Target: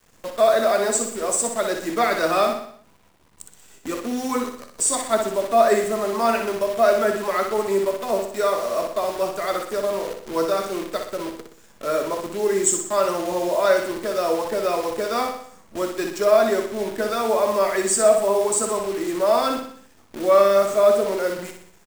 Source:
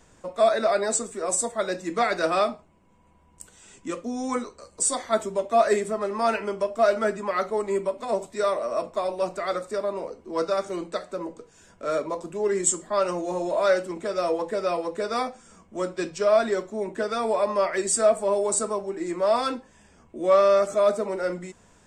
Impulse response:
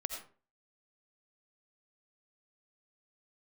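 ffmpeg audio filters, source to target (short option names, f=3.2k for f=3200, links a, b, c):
-filter_complex "[0:a]bandreject=f=60:t=h:w=6,bandreject=f=120:t=h:w=6,bandreject=f=180:t=h:w=6,acrusher=bits=7:dc=4:mix=0:aa=0.000001,asplit=2[a][b];[b]aecho=0:1:61|122|183|244|305|366:0.473|0.237|0.118|0.0591|0.0296|0.0148[c];[a][c]amix=inputs=2:normalize=0,volume=2.5dB"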